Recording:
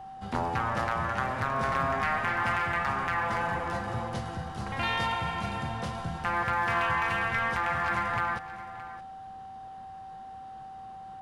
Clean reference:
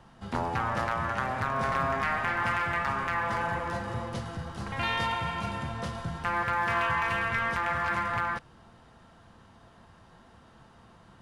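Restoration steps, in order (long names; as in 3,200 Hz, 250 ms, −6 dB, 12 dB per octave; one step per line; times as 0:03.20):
notch filter 770 Hz, Q 30
echo removal 619 ms −15 dB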